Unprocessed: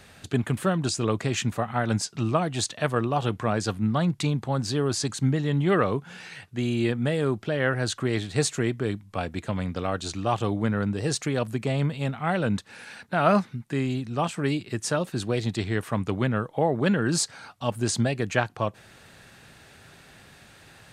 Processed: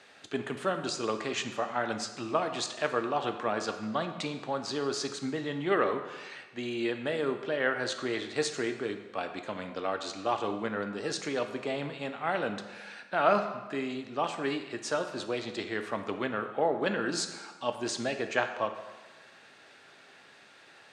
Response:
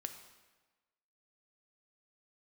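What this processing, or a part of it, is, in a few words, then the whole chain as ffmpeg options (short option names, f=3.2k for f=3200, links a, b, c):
supermarket ceiling speaker: -filter_complex "[0:a]highpass=340,lowpass=5.8k[a];[1:a]atrim=start_sample=2205[b];[a][b]afir=irnorm=-1:irlink=0"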